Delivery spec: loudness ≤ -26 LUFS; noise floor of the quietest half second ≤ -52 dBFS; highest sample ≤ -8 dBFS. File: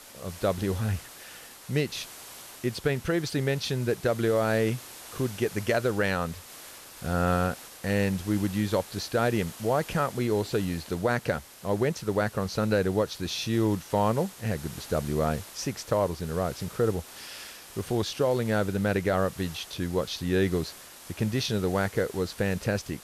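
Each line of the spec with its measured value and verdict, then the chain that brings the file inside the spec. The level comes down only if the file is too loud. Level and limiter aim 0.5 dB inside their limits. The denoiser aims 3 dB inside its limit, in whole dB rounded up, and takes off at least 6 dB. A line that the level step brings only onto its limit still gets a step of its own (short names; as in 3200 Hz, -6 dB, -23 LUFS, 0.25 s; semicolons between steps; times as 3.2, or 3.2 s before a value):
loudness -28.5 LUFS: OK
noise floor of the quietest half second -46 dBFS: fail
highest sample -14.0 dBFS: OK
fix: denoiser 9 dB, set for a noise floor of -46 dBFS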